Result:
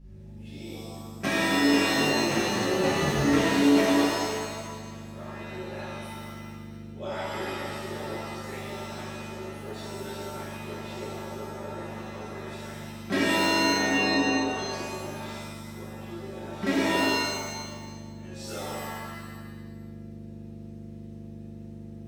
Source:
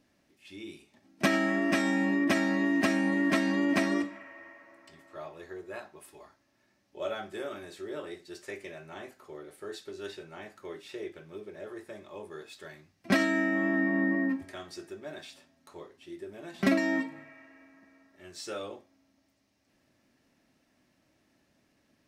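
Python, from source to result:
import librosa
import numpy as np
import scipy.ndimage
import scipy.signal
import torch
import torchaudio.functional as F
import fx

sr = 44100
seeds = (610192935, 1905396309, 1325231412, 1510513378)

y = fx.ring_mod(x, sr, carrier_hz=fx.line((1.94, 43.0), (3.22, 150.0)), at=(1.94, 3.22), fade=0.02)
y = fx.add_hum(y, sr, base_hz=50, snr_db=10)
y = fx.rev_shimmer(y, sr, seeds[0], rt60_s=1.3, semitones=7, shimmer_db=-2, drr_db=-8.0)
y = F.gain(torch.from_numpy(y), -7.5).numpy()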